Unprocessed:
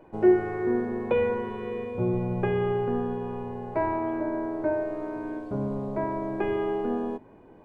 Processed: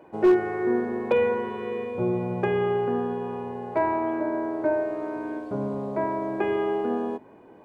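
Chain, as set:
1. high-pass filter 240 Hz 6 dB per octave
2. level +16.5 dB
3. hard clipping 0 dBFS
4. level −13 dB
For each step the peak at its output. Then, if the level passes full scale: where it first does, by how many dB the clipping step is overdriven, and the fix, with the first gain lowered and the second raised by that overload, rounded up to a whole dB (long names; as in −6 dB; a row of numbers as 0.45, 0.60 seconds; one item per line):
−11.5, +5.0, 0.0, −13.0 dBFS
step 2, 5.0 dB
step 2 +11.5 dB, step 4 −8 dB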